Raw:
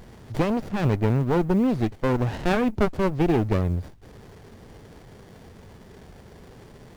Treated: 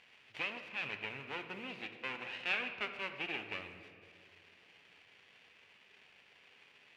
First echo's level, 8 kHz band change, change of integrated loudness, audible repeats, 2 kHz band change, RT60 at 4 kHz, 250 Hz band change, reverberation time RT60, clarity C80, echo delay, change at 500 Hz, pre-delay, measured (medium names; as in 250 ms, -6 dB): no echo, no reading, -16.0 dB, no echo, -3.0 dB, 1.3 s, -28.5 dB, 2.0 s, 9.5 dB, no echo, -23.5 dB, 4 ms